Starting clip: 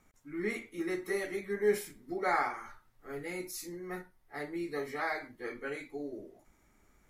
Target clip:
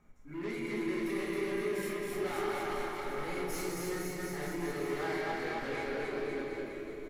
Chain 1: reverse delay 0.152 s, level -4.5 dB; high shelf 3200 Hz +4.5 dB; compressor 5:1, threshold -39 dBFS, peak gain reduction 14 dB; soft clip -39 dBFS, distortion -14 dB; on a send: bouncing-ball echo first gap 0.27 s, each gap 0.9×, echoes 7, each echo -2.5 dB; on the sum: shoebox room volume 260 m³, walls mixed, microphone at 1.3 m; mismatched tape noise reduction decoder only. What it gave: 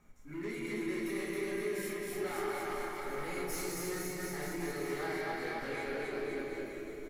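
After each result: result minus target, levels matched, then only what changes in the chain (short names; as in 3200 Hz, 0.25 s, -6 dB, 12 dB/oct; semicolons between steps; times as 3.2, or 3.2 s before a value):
compressor: peak gain reduction +5 dB; 8000 Hz band +4.0 dB
change: compressor 5:1, threshold -33 dBFS, peak gain reduction 9.5 dB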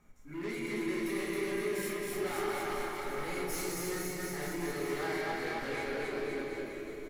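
8000 Hz band +4.0 dB
change: high shelf 3200 Hz -2.5 dB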